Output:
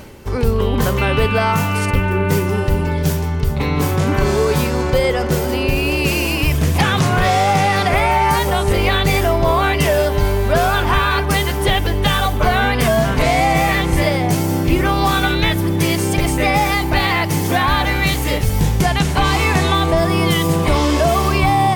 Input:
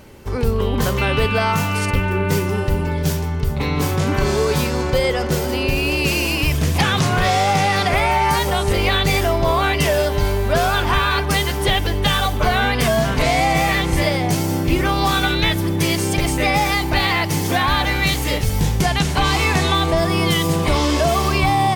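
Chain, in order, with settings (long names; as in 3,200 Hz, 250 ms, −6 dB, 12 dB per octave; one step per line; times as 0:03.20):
dynamic equaliser 4,700 Hz, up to −4 dB, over −34 dBFS, Q 0.73
reversed playback
upward compression, threshold −27 dBFS
reversed playback
level +2.5 dB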